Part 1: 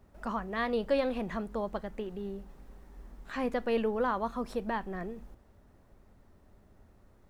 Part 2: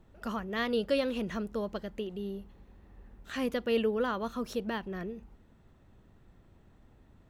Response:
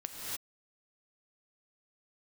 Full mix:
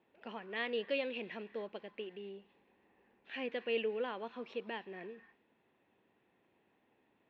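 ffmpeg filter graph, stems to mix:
-filter_complex "[0:a]alimiter=level_in=5dB:limit=-24dB:level=0:latency=1,volume=-5dB,highpass=f=1.2k:w=0.5412,highpass=f=1.2k:w=1.3066,acrusher=bits=9:mix=0:aa=0.000001,volume=-6.5dB,asplit=2[a][b];[b]volume=-7.5dB[c];[1:a]volume=-3.5dB[d];[2:a]atrim=start_sample=2205[e];[c][e]afir=irnorm=-1:irlink=0[f];[a][d][f]amix=inputs=3:normalize=0,highpass=390,equalizer=f=620:t=q:w=4:g=-5,equalizer=f=1.3k:t=q:w=4:g=-9,equalizer=f=2.5k:t=q:w=4:g=5,lowpass=f=3.3k:w=0.5412,lowpass=f=3.3k:w=1.3066"

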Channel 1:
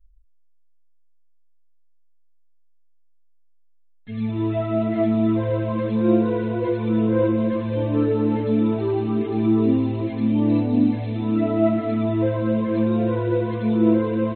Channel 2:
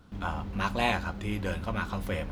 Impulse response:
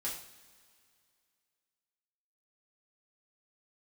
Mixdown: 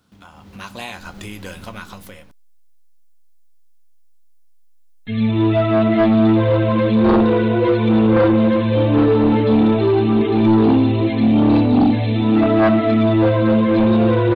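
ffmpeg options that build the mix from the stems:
-filter_complex "[0:a]aeval=exprs='0.473*sin(PI/2*2.24*val(0)/0.473)':c=same,adelay=1000,volume=-2.5dB[a];[1:a]acompressor=threshold=-36dB:ratio=8,highpass=93,dynaudnorm=f=160:g=7:m=13dB,volume=-6dB[b];[a][b]amix=inputs=2:normalize=0,highshelf=f=3.2k:g=11.5"

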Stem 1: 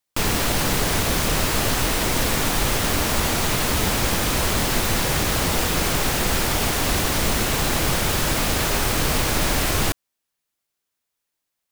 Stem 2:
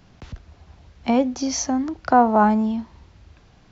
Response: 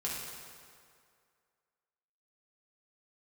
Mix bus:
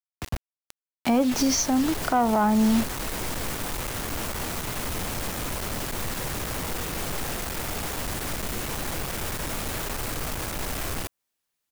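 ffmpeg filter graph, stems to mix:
-filter_complex "[0:a]adynamicequalizer=threshold=0.0158:dfrequency=4100:dqfactor=0.77:tfrequency=4100:tqfactor=0.77:attack=5:release=100:ratio=0.375:range=2:mode=cutabove:tftype=bell,acontrast=75,aeval=exprs='(tanh(14.1*val(0)+0.4)-tanh(0.4))/14.1':c=same,adelay=1150,volume=-13dB[a];[1:a]acrusher=bits=5:mix=0:aa=0.000001,dynaudnorm=f=190:g=5:m=12.5dB,volume=-6dB[b];[a][b]amix=inputs=2:normalize=0,acontrast=81,alimiter=limit=-14dB:level=0:latency=1:release=285"

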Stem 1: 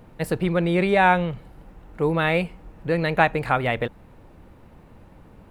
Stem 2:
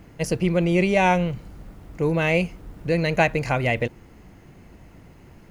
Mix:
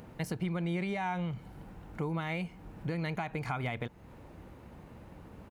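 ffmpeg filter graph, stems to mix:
-filter_complex "[0:a]alimiter=limit=-13dB:level=0:latency=1:release=62,acompressor=threshold=-36dB:ratio=2.5,volume=-1.5dB[a];[1:a]highpass=61,acompressor=threshold=-24dB:ratio=6,adelay=0.7,volume=-13.5dB[b];[a][b]amix=inputs=2:normalize=0,highpass=44,acompressor=mode=upward:threshold=-53dB:ratio=2.5"

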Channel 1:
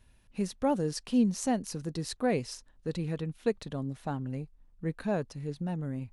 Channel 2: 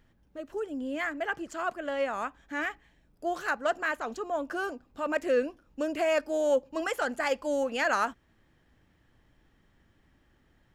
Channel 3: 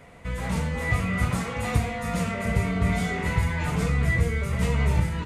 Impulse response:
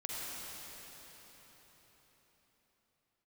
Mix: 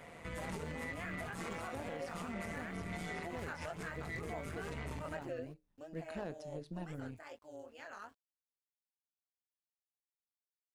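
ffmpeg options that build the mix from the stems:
-filter_complex "[0:a]asoftclip=type=hard:threshold=-25dB,flanger=delay=7.9:depth=4.4:regen=-77:speed=0.67:shape=triangular,acrossover=split=3100[a][b];[b]acompressor=threshold=-48dB:ratio=4:attack=1:release=60[c];[a][c]amix=inputs=2:normalize=0,adelay=1100,volume=-0.5dB[d];[1:a]flanger=delay=19:depth=6.3:speed=2.7,aeval=exprs='val(0)*gte(abs(val(0)),0.00282)':c=same,volume=-5.5dB,afade=t=out:st=5.23:d=0.68:silence=0.251189,asplit=2[e][f];[2:a]asoftclip=type=tanh:threshold=-19dB,volume=0.5dB[g];[f]apad=whole_len=231563[h];[g][h]sidechaincompress=threshold=-46dB:ratio=8:attack=21:release=214[i];[d][i]amix=inputs=2:normalize=0,highpass=f=170:p=1,alimiter=level_in=4dB:limit=-24dB:level=0:latency=1:release=175,volume=-4dB,volume=0dB[j];[e][j]amix=inputs=2:normalize=0,tremolo=f=160:d=0.621,alimiter=level_in=8dB:limit=-24dB:level=0:latency=1:release=221,volume=-8dB"

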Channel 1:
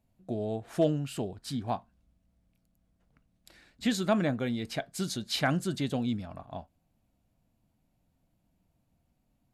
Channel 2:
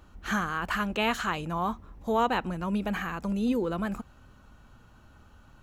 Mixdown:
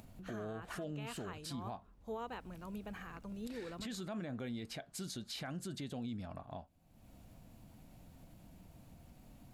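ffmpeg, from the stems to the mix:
-filter_complex "[0:a]acompressor=mode=upward:threshold=-36dB:ratio=2.5,volume=-4dB[a];[1:a]equalizer=f=440:w=5.3:g=4,volume=-16.5dB[b];[a][b]amix=inputs=2:normalize=0,alimiter=level_in=10.5dB:limit=-24dB:level=0:latency=1:release=123,volume=-10.5dB"

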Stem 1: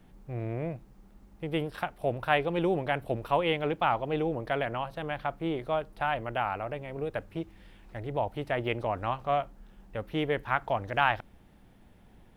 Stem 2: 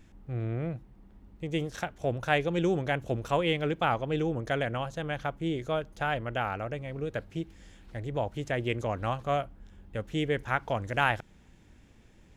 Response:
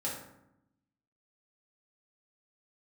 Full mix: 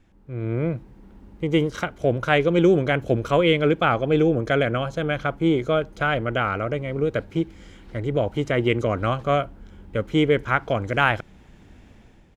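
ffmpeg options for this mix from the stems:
-filter_complex "[0:a]highpass=f=82:p=1,alimiter=limit=-20dB:level=0:latency=1,volume=-7dB[a];[1:a]volume=-1,adelay=0.9,volume=-3dB[b];[a][b]amix=inputs=2:normalize=0,highshelf=f=6.9k:g=-9.5,dynaudnorm=f=130:g=7:m=11dB"

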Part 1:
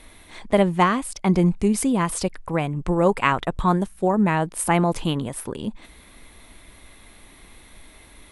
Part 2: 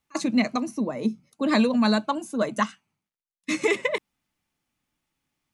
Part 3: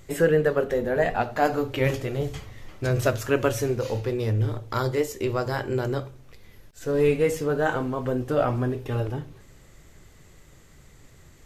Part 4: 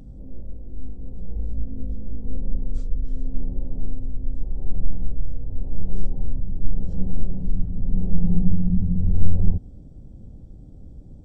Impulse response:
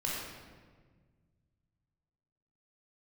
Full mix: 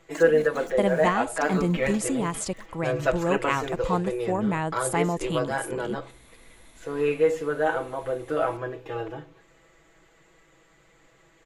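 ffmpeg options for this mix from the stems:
-filter_complex "[0:a]adelay=250,volume=-6.5dB[a];[1:a]acompressor=threshold=-33dB:ratio=3,aeval=exprs='val(0)*gte(abs(val(0)),0.01)':c=same,volume=-5.5dB,afade=t=out:st=1.36:d=0.7:silence=0.298538[b];[2:a]acrossover=split=310 3600:gain=0.178 1 0.141[c][d][e];[c][d][e]amix=inputs=3:normalize=0,aecho=1:1:6.1:1,volume=-2.5dB[f];[a][b][f]amix=inputs=3:normalize=0,equalizer=f=7.1k:t=o:w=0.31:g=9"

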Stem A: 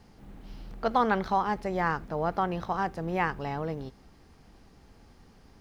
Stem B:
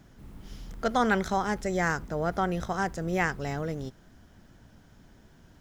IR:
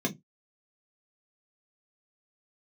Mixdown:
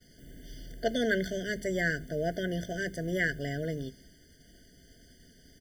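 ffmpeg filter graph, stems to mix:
-filter_complex "[0:a]highshelf=f=2.4k:g=8.5,volume=-2.5dB,asplit=2[a][b];[b]volume=-23dB[c];[1:a]highpass=660,acompressor=mode=upward:threshold=-46dB:ratio=2.5,adelay=0.3,volume=-14dB[d];[2:a]atrim=start_sample=2205[e];[c][e]afir=irnorm=-1:irlink=0[f];[a][d][f]amix=inputs=3:normalize=0,agate=range=-33dB:threshold=-53dB:ratio=3:detection=peak,highshelf=f=3.7k:g=8.5,afftfilt=real='re*eq(mod(floor(b*sr/1024/720),2),0)':imag='im*eq(mod(floor(b*sr/1024/720),2),0)':win_size=1024:overlap=0.75"

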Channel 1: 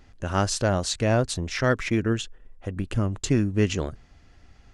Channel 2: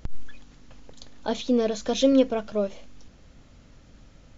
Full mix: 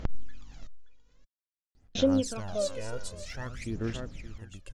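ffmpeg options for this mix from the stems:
-filter_complex "[0:a]highshelf=f=5.9k:g=9,adelay=1750,volume=-18.5dB,asplit=2[a][b];[b]volume=-9.5dB[c];[1:a]acompressor=threshold=-41dB:ratio=2,volume=0dB,asplit=3[d][e][f];[d]atrim=end=0.67,asetpts=PTS-STARTPTS,afade=t=out:st=0.666:d=0.004:c=hsin[g];[e]atrim=start=0.67:end=1.95,asetpts=PTS-STARTPTS,volume=0[h];[f]atrim=start=1.95,asetpts=PTS-STARTPTS,afade=t=in:d=0.004:c=hsin[i];[g][h][i]concat=n=3:v=0:a=1,asplit=2[j][k];[k]volume=-15.5dB[l];[c][l]amix=inputs=2:normalize=0,aecho=0:1:575:1[m];[a][j][m]amix=inputs=3:normalize=0,aphaser=in_gain=1:out_gain=1:delay=2.1:decay=0.68:speed=0.51:type=sinusoidal"

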